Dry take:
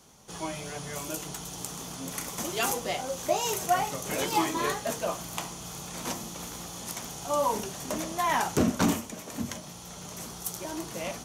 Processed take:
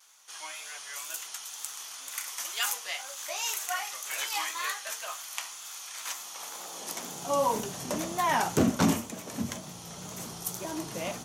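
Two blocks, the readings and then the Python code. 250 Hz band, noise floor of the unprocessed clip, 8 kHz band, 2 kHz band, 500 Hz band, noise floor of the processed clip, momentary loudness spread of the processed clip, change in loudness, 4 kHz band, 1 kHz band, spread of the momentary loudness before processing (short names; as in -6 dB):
-1.0 dB, -44 dBFS, 0.0 dB, +0.5 dB, -3.5 dB, -44 dBFS, 12 LU, -1.0 dB, +0.5 dB, -2.5 dB, 11 LU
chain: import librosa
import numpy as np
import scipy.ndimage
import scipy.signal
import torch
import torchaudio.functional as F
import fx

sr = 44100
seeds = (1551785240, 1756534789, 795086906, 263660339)

y = fx.vibrato(x, sr, rate_hz=2.0, depth_cents=61.0)
y = fx.filter_sweep_highpass(y, sr, from_hz=1500.0, to_hz=94.0, start_s=6.13, end_s=7.55, q=1.0)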